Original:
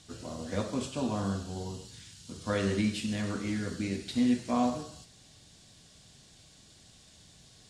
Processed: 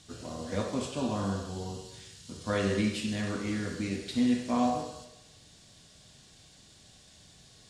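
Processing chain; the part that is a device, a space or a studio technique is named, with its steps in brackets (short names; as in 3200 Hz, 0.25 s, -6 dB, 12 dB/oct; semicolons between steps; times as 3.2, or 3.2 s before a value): filtered reverb send (on a send: HPF 400 Hz 24 dB/oct + LPF 5100 Hz + reverb RT60 0.95 s, pre-delay 23 ms, DRR 4 dB)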